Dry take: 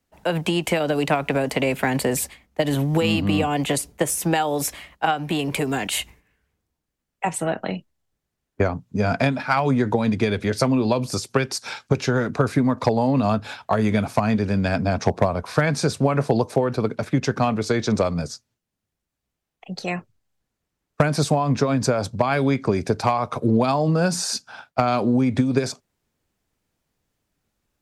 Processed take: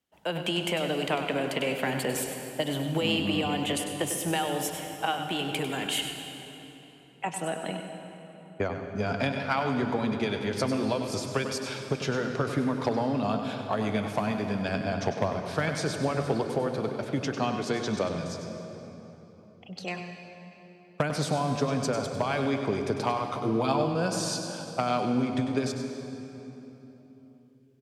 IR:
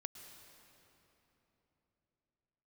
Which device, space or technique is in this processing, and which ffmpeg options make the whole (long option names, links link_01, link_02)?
PA in a hall: -filter_complex "[0:a]asettb=1/sr,asplit=3[link_01][link_02][link_03];[link_01]atrim=end=23.254[link_04];[link_02]atrim=start=23.25:end=23.94,asetpts=PTS-STARTPTS,afade=type=in:duration=0.004:curve=qsin,afade=type=out:start_time=0.686:duration=0.004:curve=qsin,asplit=2[link_05][link_06];[link_06]adelay=15,volume=-4.5dB[link_07];[link_05][link_07]amix=inputs=2:normalize=0,atrim=end_sample=30429[link_08];[link_03]atrim=start=23.936[link_09];[link_04][link_08]acrossfade=duration=0.004:curve1=hsin:curve2=qsin[link_10];[link_10][link_09]acrossfade=duration=0.004:curve1=qsin:curve2=hsin,highpass=frequency=140:poles=1,equalizer=frequency=3100:width_type=o:width=0.3:gain=8,aecho=1:1:98:0.335[link_11];[1:a]atrim=start_sample=2205[link_12];[link_11][link_12]afir=irnorm=-1:irlink=0,volume=-3.5dB"